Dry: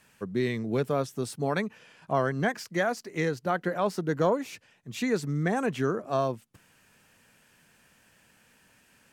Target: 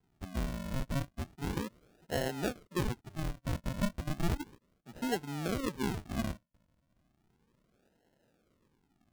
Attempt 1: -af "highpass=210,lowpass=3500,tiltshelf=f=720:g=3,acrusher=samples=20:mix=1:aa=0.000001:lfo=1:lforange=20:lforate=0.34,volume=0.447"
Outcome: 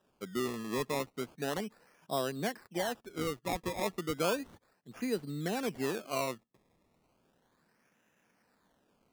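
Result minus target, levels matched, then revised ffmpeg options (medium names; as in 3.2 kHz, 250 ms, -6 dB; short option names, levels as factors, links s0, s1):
decimation with a swept rate: distortion -20 dB
-af "highpass=210,lowpass=3500,tiltshelf=f=720:g=3,acrusher=samples=74:mix=1:aa=0.000001:lfo=1:lforange=74:lforate=0.34,volume=0.447"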